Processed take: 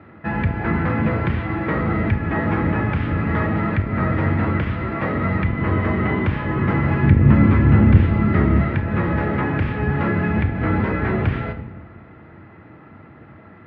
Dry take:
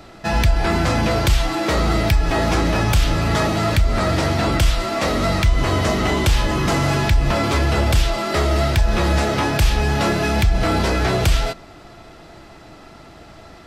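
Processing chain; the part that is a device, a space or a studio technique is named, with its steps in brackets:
0:07.03–0:08.61: low shelf with overshoot 330 Hz +7.5 dB, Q 1.5
rectangular room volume 790 cubic metres, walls mixed, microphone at 0.54 metres
sub-octave bass pedal (sub-octave generator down 1 octave, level −2 dB; loudspeaker in its box 82–2,100 Hz, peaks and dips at 89 Hz +4 dB, 220 Hz +5 dB, 680 Hz −8 dB, 1,900 Hz +3 dB)
level −2.5 dB

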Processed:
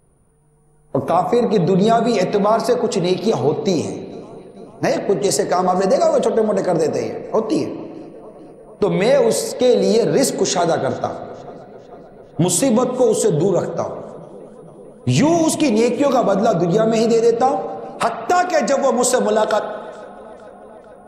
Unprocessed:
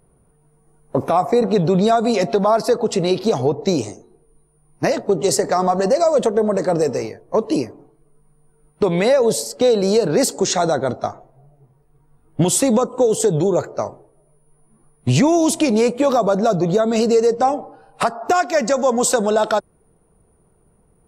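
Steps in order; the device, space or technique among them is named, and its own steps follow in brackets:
dub delay into a spring reverb (feedback echo with a low-pass in the loop 445 ms, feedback 76%, low-pass 4,000 Hz, level −22 dB; spring reverb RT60 1.6 s, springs 36/60 ms, chirp 60 ms, DRR 7.5 dB)

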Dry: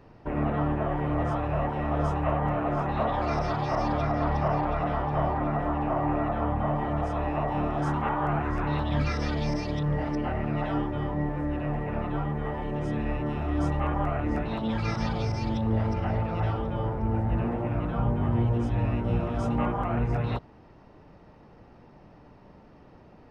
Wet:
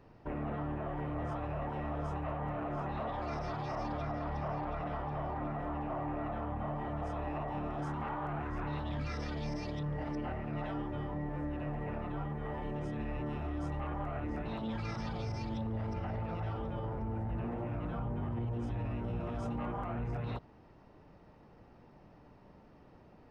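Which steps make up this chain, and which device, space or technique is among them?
soft clipper into limiter (soft clipping −18 dBFS, distortion −22 dB; brickwall limiter −24.5 dBFS, peak gain reduction 5.5 dB)
level −6 dB

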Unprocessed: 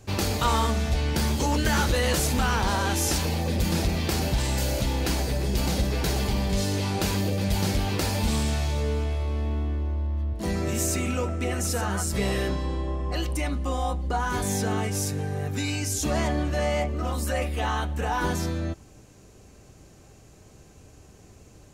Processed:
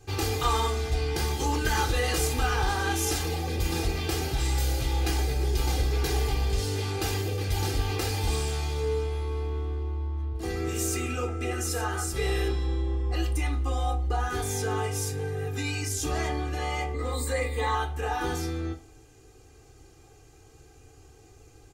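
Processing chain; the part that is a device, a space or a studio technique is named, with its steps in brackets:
microphone above a desk (comb filter 2.5 ms, depth 84%; convolution reverb RT60 0.35 s, pre-delay 4 ms, DRR 3 dB)
0:16.94–0:17.75: EQ curve with evenly spaced ripples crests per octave 1, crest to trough 15 dB
level −6 dB

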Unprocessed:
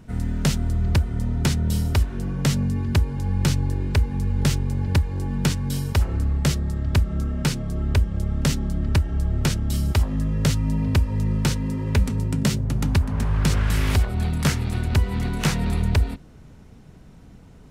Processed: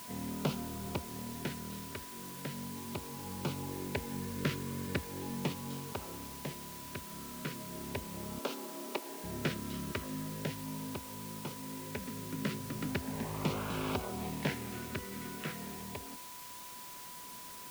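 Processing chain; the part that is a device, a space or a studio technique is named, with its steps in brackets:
shortwave radio (band-pass filter 260–2,600 Hz; amplitude tremolo 0.22 Hz, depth 66%; auto-filter notch sine 0.38 Hz 800–1,900 Hz; steady tone 990 Hz −47 dBFS; white noise bed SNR 9 dB)
0:08.39–0:09.24: high-pass filter 300 Hz 24 dB per octave
level −4 dB

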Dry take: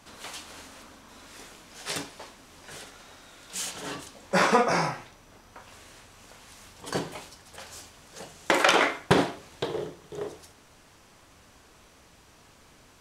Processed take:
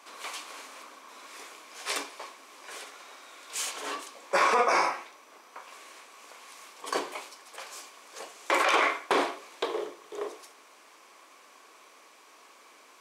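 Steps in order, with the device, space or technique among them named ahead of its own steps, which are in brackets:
laptop speaker (high-pass filter 330 Hz 24 dB per octave; parametric band 1,100 Hz +9 dB 0.24 octaves; parametric band 2,300 Hz +6.5 dB 0.22 octaves; brickwall limiter −13.5 dBFS, peak gain reduction 10 dB)

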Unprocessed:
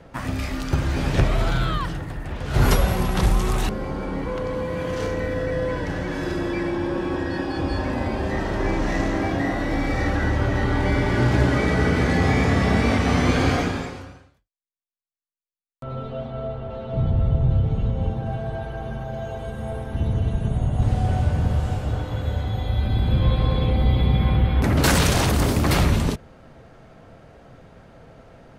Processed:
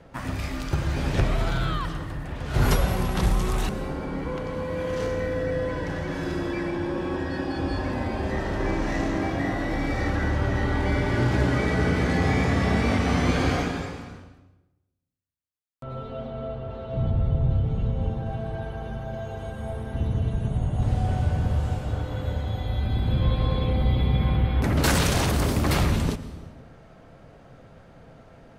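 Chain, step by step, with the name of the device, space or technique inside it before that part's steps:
compressed reverb return (on a send at −7 dB: convolution reverb RT60 1.0 s, pre-delay 93 ms + downward compressor, threshold −22 dBFS, peak gain reduction 11.5 dB)
on the sum: level −3.5 dB

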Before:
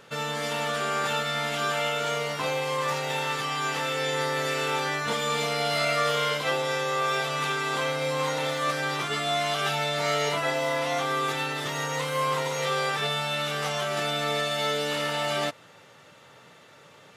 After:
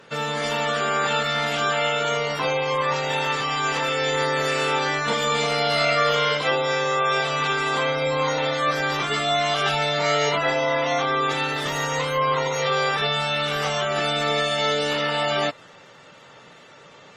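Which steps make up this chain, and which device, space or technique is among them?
noise-suppressed video call (high-pass filter 110 Hz 12 dB per octave; gate on every frequency bin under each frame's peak −25 dB strong; level +5 dB; Opus 24 kbit/s 48,000 Hz)

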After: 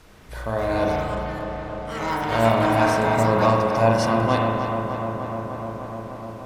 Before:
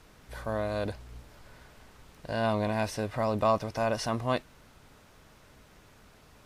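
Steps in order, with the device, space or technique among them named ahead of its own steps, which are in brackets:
0:01.11–0:02.28: low-pass filter 4,700 Hz
delay with pitch and tempo change per echo 364 ms, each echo +6 semitones, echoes 3, each echo −6 dB
dub delay into a spring reverb (feedback echo with a low-pass in the loop 301 ms, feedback 82%, low-pass 3,000 Hz, level −7.5 dB; spring reverb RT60 1.5 s, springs 35 ms, chirp 75 ms, DRR 0 dB)
level +5 dB

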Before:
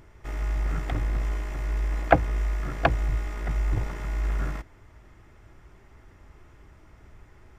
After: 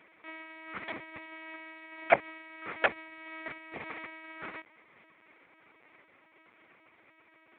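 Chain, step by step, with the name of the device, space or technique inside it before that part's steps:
talking toy (linear-prediction vocoder at 8 kHz pitch kept; high-pass filter 410 Hz 12 dB per octave; parametric band 2,300 Hz +10.5 dB 0.39 octaves)
level −3.5 dB

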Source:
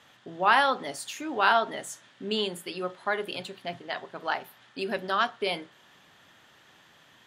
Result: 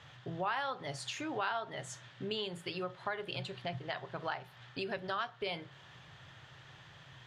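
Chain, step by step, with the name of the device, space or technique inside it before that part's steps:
jukebox (low-pass filter 5,600 Hz 12 dB per octave; low shelf with overshoot 170 Hz +8.5 dB, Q 3; downward compressor 3 to 1, threshold −38 dBFS, peak gain reduction 16 dB)
level +1 dB

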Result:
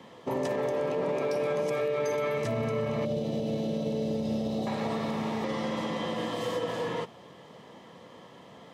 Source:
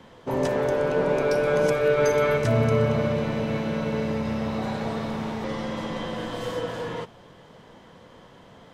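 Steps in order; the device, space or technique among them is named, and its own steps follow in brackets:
PA system with an anti-feedback notch (high-pass filter 140 Hz 12 dB per octave; Butterworth band-reject 1,500 Hz, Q 7.7; brickwall limiter −22 dBFS, peak gain reduction 10.5 dB)
0:03.05–0:04.67: flat-topped bell 1,500 Hz −15 dB

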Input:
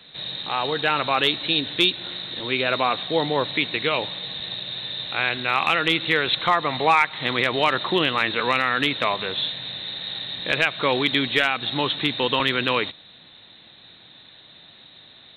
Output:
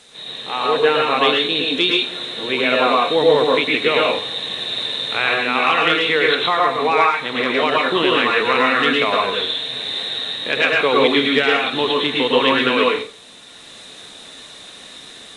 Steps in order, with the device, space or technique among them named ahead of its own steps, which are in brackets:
filmed off a television (band-pass filter 180–7,000 Hz; parametric band 440 Hz +8.5 dB 0.23 octaves; convolution reverb RT60 0.40 s, pre-delay 101 ms, DRR −2 dB; white noise bed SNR 29 dB; automatic gain control gain up to 7 dB; level −1 dB; AAC 48 kbit/s 22,050 Hz)

